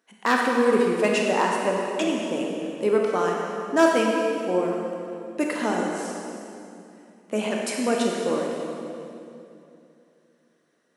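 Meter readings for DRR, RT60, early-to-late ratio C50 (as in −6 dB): −1.0 dB, 2.8 s, 0.0 dB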